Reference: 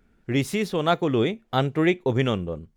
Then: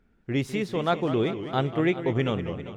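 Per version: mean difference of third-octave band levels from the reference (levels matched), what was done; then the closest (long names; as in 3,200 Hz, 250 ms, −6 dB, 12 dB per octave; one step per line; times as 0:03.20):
5.0 dB: low-pass filter 4,000 Hz 6 dB per octave
feedback echo with a swinging delay time 199 ms, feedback 63%, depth 182 cents, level −11 dB
level −3 dB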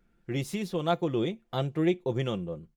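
1.5 dB: comb filter 5.8 ms, depth 49%
dynamic equaliser 1,700 Hz, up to −6 dB, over −39 dBFS, Q 1.1
level −7 dB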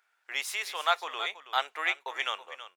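15.0 dB: high-pass filter 860 Hz 24 dB per octave
single-tap delay 325 ms −13 dB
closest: second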